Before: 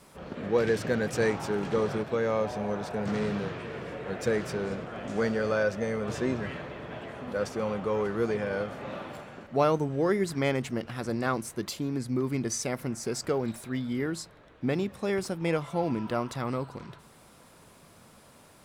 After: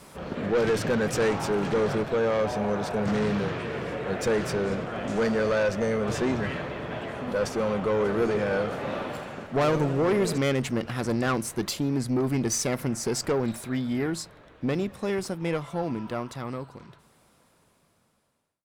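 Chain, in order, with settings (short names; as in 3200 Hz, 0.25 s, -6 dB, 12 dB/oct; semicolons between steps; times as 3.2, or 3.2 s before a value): ending faded out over 5.83 s; tube stage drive 26 dB, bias 0.3; 7.92–10.38 warbling echo 83 ms, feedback 71%, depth 206 cents, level -12 dB; gain +7 dB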